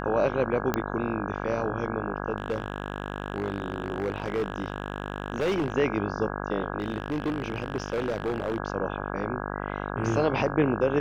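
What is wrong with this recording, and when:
mains buzz 50 Hz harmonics 33 −33 dBFS
0:00.74: click −11 dBFS
0:02.36–0:05.74: clipping −22.5 dBFS
0:06.78–0:08.58: clipping −23.5 dBFS

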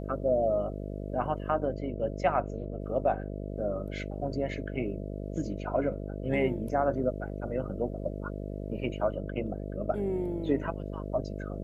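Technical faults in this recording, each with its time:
mains buzz 50 Hz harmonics 13 −37 dBFS

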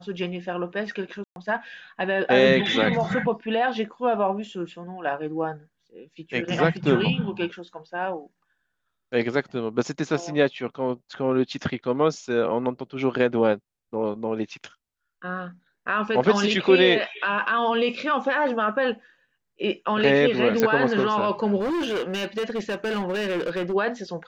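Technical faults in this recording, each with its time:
0:01.24–0:01.36: drop-out 121 ms
0:20.60: click −8 dBFS
0:21.59–0:23.74: clipping −23 dBFS

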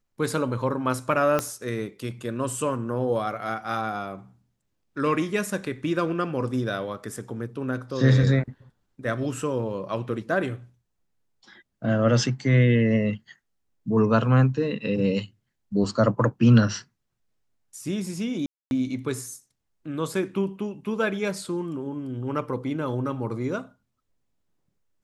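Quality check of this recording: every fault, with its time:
0:01.39: click −10 dBFS
0:18.46–0:18.71: drop-out 251 ms

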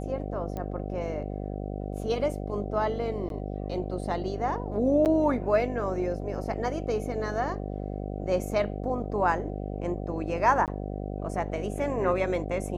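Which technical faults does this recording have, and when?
mains buzz 50 Hz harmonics 15 −34 dBFS
0:00.57: click −22 dBFS
0:03.29–0:03.30: drop-out 12 ms
0:05.05–0:05.06: drop-out 8.8 ms
0:10.66–0:10.68: drop-out 18 ms

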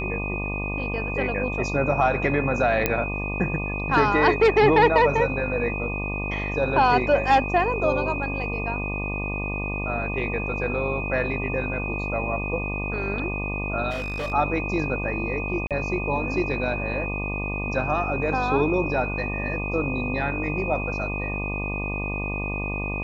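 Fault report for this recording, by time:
mains buzz 50 Hz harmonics 24 −30 dBFS
whistle 2,500 Hz −30 dBFS
0:02.86: click −6 dBFS
0:13.90–0:14.33: clipping −25.5 dBFS
0:15.67–0:15.71: drop-out 37 ms

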